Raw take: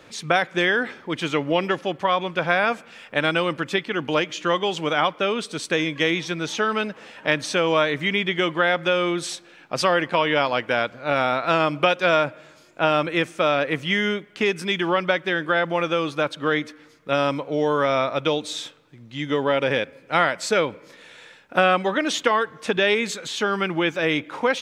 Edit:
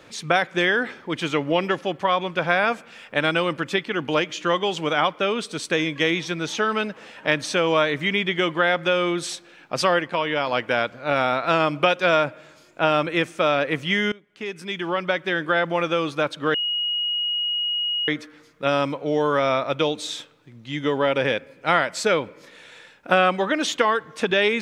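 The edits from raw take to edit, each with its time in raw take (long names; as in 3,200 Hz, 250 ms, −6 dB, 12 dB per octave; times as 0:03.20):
0:09.99–0:10.47: clip gain −3.5 dB
0:14.12–0:15.40: fade in, from −22 dB
0:16.54: insert tone 2,890 Hz −21.5 dBFS 1.54 s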